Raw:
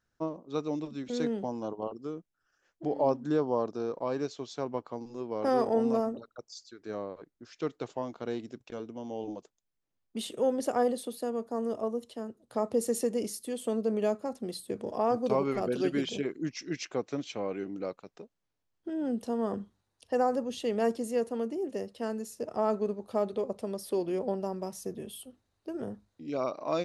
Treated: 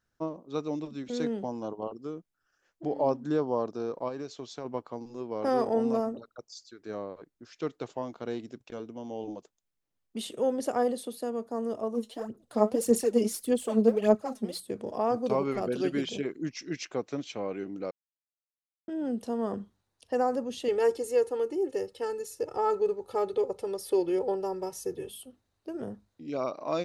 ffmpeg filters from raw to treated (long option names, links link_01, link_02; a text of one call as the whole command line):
ffmpeg -i in.wav -filter_complex "[0:a]asplit=3[link_01][link_02][link_03];[link_01]afade=type=out:start_time=4.08:duration=0.02[link_04];[link_02]acompressor=threshold=-33dB:ratio=5:attack=3.2:release=140:knee=1:detection=peak,afade=type=in:start_time=4.08:duration=0.02,afade=type=out:start_time=4.64:duration=0.02[link_05];[link_03]afade=type=in:start_time=4.64:duration=0.02[link_06];[link_04][link_05][link_06]amix=inputs=3:normalize=0,asplit=3[link_07][link_08][link_09];[link_07]afade=type=out:start_time=11.93:duration=0.02[link_10];[link_08]aphaser=in_gain=1:out_gain=1:delay=4.8:decay=0.7:speed=1.7:type=sinusoidal,afade=type=in:start_time=11.93:duration=0.02,afade=type=out:start_time=14.59:duration=0.02[link_11];[link_09]afade=type=in:start_time=14.59:duration=0.02[link_12];[link_10][link_11][link_12]amix=inputs=3:normalize=0,asettb=1/sr,asplit=3[link_13][link_14][link_15];[link_13]atrim=end=20.684[link_16];[link_14]atrim=start=20.68:end=25.1,asetpts=PTS-STARTPTS,afade=type=in:duration=0.004:curve=qsin,afade=type=out:start_time=4.416:duration=0.004:curve=qsin,aecho=1:1:2.3:0.87,atrim=end_sample=194922[link_17];[link_15]atrim=start=25.096[link_18];[link_16][link_17]acrossfade=duration=0.004:curve1=hsin:curve2=qsin[link_19];[link_19][link_18]acrossfade=duration=0.004:curve1=qsin:curve2=hsin,asplit=3[link_20][link_21][link_22];[link_20]atrim=end=17.91,asetpts=PTS-STARTPTS,afade=type=out:start_time=17.906:duration=0.004:curve=hsin[link_23];[link_21]atrim=start=17.91:end=18.88,asetpts=PTS-STARTPTS,volume=0[link_24];[link_22]atrim=start=18.88,asetpts=PTS-STARTPTS,afade=type=in:duration=0.004:curve=hsin[link_25];[link_23][link_24][link_25]concat=n=3:v=0:a=1" out.wav